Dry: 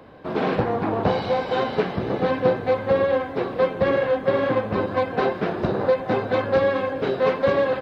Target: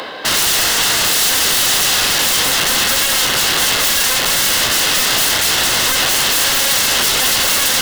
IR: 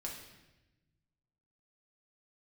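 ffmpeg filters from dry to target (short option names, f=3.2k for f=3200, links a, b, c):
-filter_complex "[0:a]asplit=2[a][b];[b]highpass=f=720:p=1,volume=21dB,asoftclip=type=tanh:threshold=-6dB[c];[a][c]amix=inputs=2:normalize=0,lowpass=f=2.2k:p=1,volume=-6dB,highpass=f=250:p=1,highshelf=f=3.1k:g=11.5,areverse,acompressor=mode=upward:threshold=-24dB:ratio=2.5,areverse,aeval=exprs='(mod(9.44*val(0)+1,2)-1)/9.44':c=same,bandreject=f=2.4k:w=7.1,acrossover=split=2300[d][e];[e]aeval=exprs='0.224*sin(PI/2*2.24*val(0)/0.224)':c=same[f];[d][f]amix=inputs=2:normalize=0,volume=4.5dB"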